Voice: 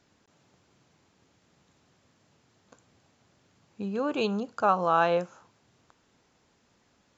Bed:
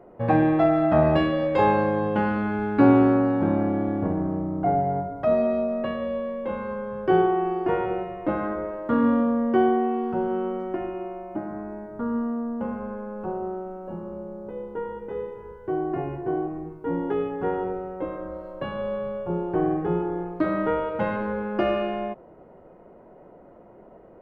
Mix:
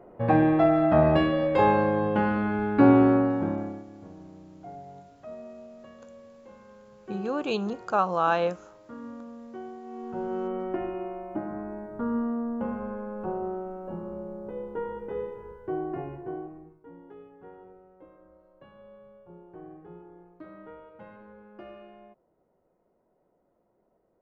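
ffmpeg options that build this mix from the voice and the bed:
-filter_complex "[0:a]adelay=3300,volume=-0.5dB[a];[1:a]volume=18dB,afade=t=out:st=3.15:d=0.7:silence=0.105925,afade=t=in:st=9.83:d=0.81:silence=0.112202,afade=t=out:st=15.24:d=1.67:silence=0.0944061[b];[a][b]amix=inputs=2:normalize=0"

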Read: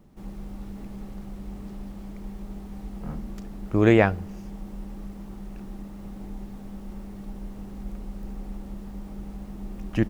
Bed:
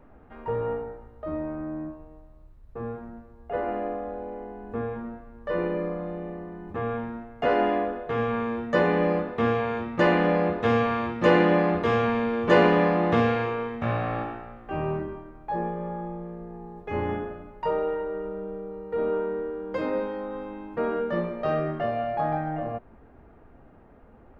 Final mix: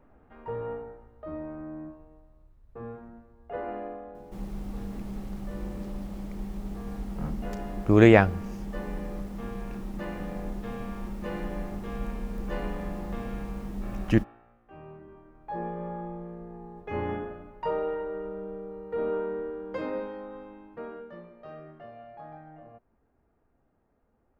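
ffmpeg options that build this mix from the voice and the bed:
-filter_complex "[0:a]adelay=4150,volume=1.5dB[a];[1:a]volume=9dB,afade=t=out:st=3.74:d=0.74:silence=0.251189,afade=t=in:st=15:d=0.81:silence=0.177828,afade=t=out:st=19.48:d=1.7:silence=0.16788[b];[a][b]amix=inputs=2:normalize=0"

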